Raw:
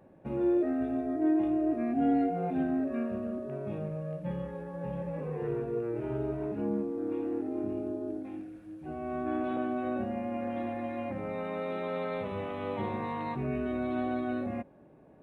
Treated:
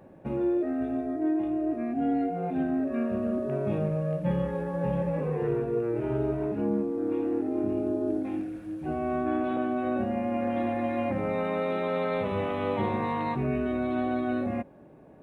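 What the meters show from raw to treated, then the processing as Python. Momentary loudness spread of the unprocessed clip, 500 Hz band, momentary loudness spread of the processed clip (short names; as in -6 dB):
10 LU, +4.5 dB, 2 LU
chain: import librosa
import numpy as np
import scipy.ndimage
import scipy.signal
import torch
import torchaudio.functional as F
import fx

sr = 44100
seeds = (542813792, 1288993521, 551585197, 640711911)

y = fx.rider(x, sr, range_db=5, speed_s=0.5)
y = y * 10.0 ** (4.0 / 20.0)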